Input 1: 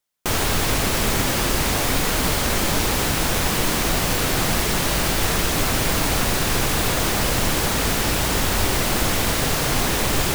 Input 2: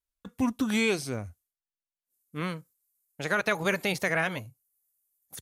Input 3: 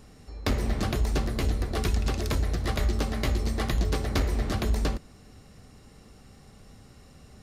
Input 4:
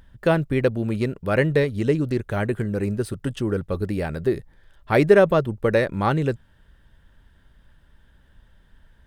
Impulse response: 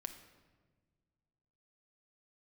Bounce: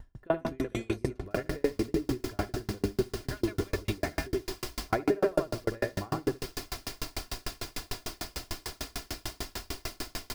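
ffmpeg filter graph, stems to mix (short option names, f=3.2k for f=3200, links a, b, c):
-filter_complex "[0:a]equalizer=f=4.9k:t=o:w=0.39:g=9.5,adelay=1050,volume=-12dB,asplit=2[a][b];[b]volume=-17dB[c];[1:a]volume=-6dB[d];[2:a]volume=-11.5dB[e];[3:a]equalizer=f=6.5k:t=o:w=2.2:g=-14,volume=2.5dB,asplit=3[f][g][h];[g]volume=-11.5dB[i];[h]volume=-10dB[j];[a][f]amix=inputs=2:normalize=0,acompressor=threshold=-25dB:ratio=6,volume=0dB[k];[4:a]atrim=start_sample=2205[l];[i][l]afir=irnorm=-1:irlink=0[m];[c][j]amix=inputs=2:normalize=0,aecho=0:1:73|146|219|292|365|438|511:1|0.51|0.26|0.133|0.0677|0.0345|0.0176[n];[d][e][k][m][n]amix=inputs=5:normalize=0,aecho=1:1:2.9:0.59,aeval=exprs='val(0)*pow(10,-37*if(lt(mod(6.7*n/s,1),2*abs(6.7)/1000),1-mod(6.7*n/s,1)/(2*abs(6.7)/1000),(mod(6.7*n/s,1)-2*abs(6.7)/1000)/(1-2*abs(6.7)/1000))/20)':c=same"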